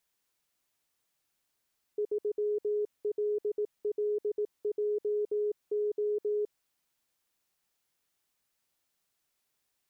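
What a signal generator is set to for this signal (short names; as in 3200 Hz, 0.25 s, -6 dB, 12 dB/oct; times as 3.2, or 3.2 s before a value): Morse "3LLJO" 18 wpm 418 Hz -27 dBFS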